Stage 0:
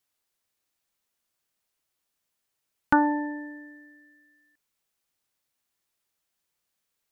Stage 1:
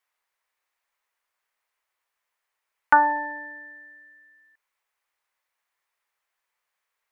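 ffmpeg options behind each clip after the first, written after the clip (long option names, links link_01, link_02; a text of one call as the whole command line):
ffmpeg -i in.wav -af "equalizer=frequency=125:width_type=o:width=1:gain=-10,equalizer=frequency=250:width_type=o:width=1:gain=-9,equalizer=frequency=500:width_type=o:width=1:gain=5,equalizer=frequency=1000:width_type=o:width=1:gain=11,equalizer=frequency=2000:width_type=o:width=1:gain=11,volume=-5.5dB" out.wav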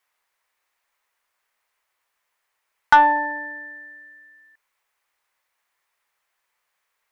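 ffmpeg -i in.wav -af "acontrast=76,volume=-1dB" out.wav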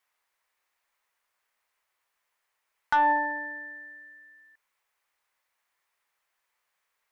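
ffmpeg -i in.wav -af "alimiter=limit=-11dB:level=0:latency=1,volume=-3.5dB" out.wav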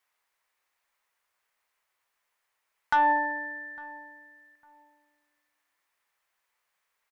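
ffmpeg -i in.wav -filter_complex "[0:a]asplit=2[link_01][link_02];[link_02]adelay=854,lowpass=frequency=1300:poles=1,volume=-21.5dB,asplit=2[link_03][link_04];[link_04]adelay=854,lowpass=frequency=1300:poles=1,volume=0.26[link_05];[link_01][link_03][link_05]amix=inputs=3:normalize=0" out.wav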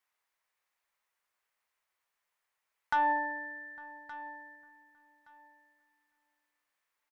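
ffmpeg -i in.wav -af "aecho=1:1:1170|2340:0.15|0.0269,volume=-5.5dB" out.wav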